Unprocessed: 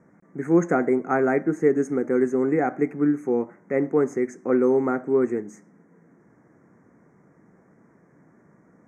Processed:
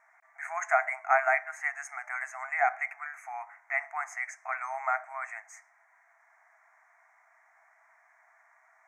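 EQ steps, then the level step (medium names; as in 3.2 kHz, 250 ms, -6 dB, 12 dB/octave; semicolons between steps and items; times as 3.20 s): brick-wall FIR high-pass 630 Hz; peaking EQ 2.2 kHz +9.5 dB 0.66 oct; 0.0 dB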